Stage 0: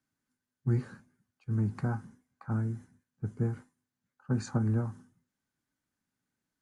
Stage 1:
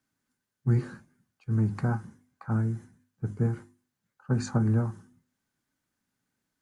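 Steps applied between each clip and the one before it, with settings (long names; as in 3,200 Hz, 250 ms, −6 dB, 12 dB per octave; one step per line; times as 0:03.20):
mains-hum notches 50/100/150/200/250/300/350 Hz
level +4.5 dB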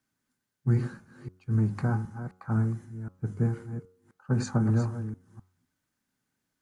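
delay that plays each chunk backwards 257 ms, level −10 dB
hum removal 92.09 Hz, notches 16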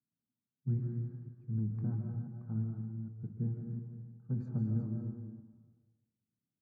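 resonant band-pass 160 Hz, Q 1.4
on a send at −2.5 dB: convolution reverb RT60 1.3 s, pre-delay 110 ms
on the sum: level −6.5 dB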